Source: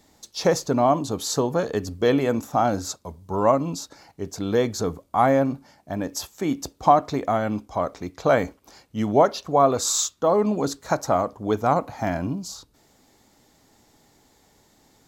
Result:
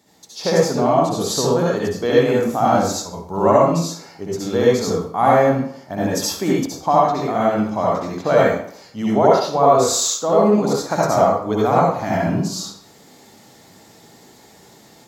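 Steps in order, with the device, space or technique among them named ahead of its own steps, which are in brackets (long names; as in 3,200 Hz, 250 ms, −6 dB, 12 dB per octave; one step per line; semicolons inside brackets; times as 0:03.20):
far laptop microphone (convolution reverb RT60 0.60 s, pre-delay 60 ms, DRR −6 dB; high-pass filter 110 Hz; automatic gain control gain up to 6.5 dB)
level −1 dB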